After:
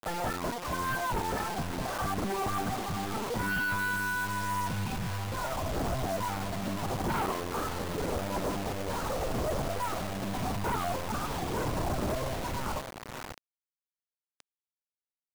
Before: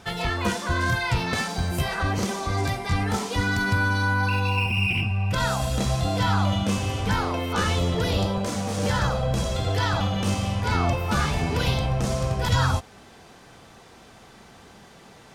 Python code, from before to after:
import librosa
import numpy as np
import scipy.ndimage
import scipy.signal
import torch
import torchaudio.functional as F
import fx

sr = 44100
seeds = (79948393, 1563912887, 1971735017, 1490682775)

p1 = np.repeat(x[::3], 3)[:len(x)]
p2 = np.clip(p1, -10.0 ** (-19.5 / 20.0), 10.0 ** (-19.5 / 20.0))
p3 = p1 + (p2 * librosa.db_to_amplitude(-6.0))
p4 = fx.rider(p3, sr, range_db=10, speed_s=0.5)
p5 = scipy.signal.sosfilt(scipy.signal.butter(4, 1300.0, 'lowpass', fs=sr, output='sos'), p4)
p6 = fx.lpc_vocoder(p5, sr, seeds[0], excitation='pitch_kept', order=16)
p7 = p6 * (1.0 - 0.56 / 2.0 + 0.56 / 2.0 * np.cos(2.0 * np.pi * 0.84 * (np.arange(len(p6)) / sr)))
p8 = fx.echo_feedback(p7, sr, ms=567, feedback_pct=31, wet_db=-16)
p9 = fx.quant_dither(p8, sr, seeds[1], bits=6, dither='none')
p10 = fx.low_shelf(p9, sr, hz=150.0, db=-9.0)
y = 10.0 ** (-26.5 / 20.0) * np.tanh(p10 / 10.0 ** (-26.5 / 20.0))